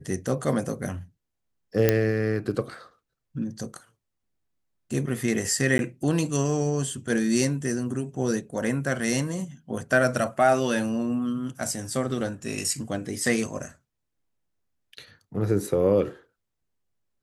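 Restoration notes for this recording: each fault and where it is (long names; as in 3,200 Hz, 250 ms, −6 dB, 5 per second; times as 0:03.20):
0:01.89: click −5 dBFS
0:05.78–0:05.79: drop-out 11 ms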